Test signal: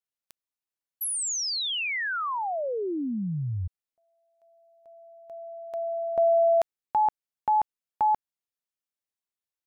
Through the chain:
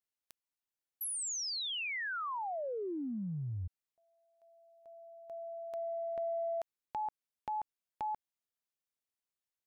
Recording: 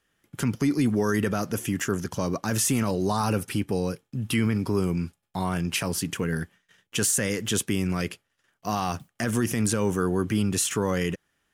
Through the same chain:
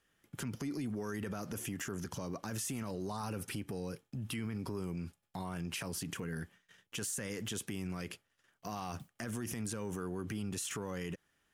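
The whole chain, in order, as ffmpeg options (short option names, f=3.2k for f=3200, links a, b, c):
-af "acompressor=threshold=-34dB:ratio=4:attack=1.8:release=47:knee=6:detection=rms,volume=-3dB"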